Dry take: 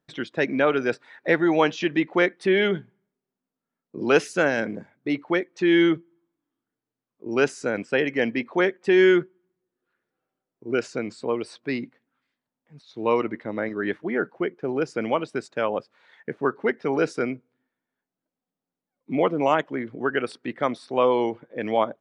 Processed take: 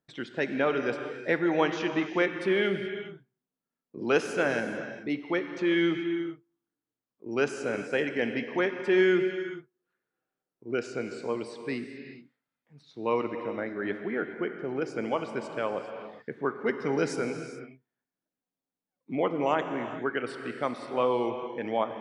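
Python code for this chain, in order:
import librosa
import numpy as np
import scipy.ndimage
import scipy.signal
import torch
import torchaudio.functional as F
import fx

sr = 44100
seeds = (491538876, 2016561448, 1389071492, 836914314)

y = fx.bass_treble(x, sr, bass_db=6, treble_db=10, at=(16.66, 17.21))
y = fx.rev_gated(y, sr, seeds[0], gate_ms=450, shape='flat', drr_db=6.5)
y = y * librosa.db_to_amplitude(-6.0)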